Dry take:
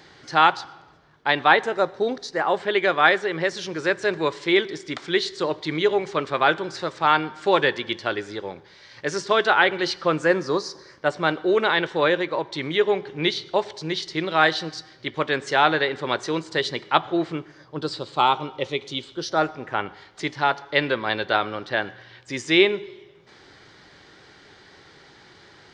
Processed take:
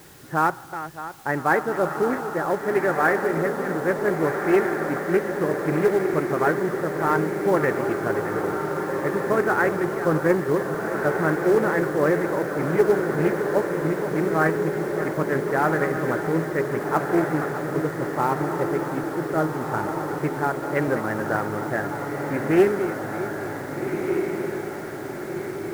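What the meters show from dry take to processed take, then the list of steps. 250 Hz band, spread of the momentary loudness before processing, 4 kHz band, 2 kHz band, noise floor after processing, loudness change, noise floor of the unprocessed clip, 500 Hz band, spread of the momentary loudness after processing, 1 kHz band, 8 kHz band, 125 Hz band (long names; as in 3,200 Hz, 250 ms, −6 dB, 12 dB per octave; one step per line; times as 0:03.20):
+4.5 dB, 13 LU, −18.5 dB, −3.5 dB, −33 dBFS, −1.0 dB, −51 dBFS, +2.0 dB, 8 LU, −2.5 dB, −0.5 dB, +7.0 dB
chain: feedback delay that plays each chunk backwards 307 ms, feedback 63%, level −12 dB
Butterworth low-pass 1,900 Hz 36 dB per octave
log-companded quantiser 6 bits
low-shelf EQ 440 Hz +8 dB
bit-depth reduction 8 bits, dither triangular
dynamic equaliser 890 Hz, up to −5 dB, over −29 dBFS, Q 0.85
feedback delay with all-pass diffusion 1,605 ms, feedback 61%, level −5 dB
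highs frequency-modulated by the lows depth 0.22 ms
level −2 dB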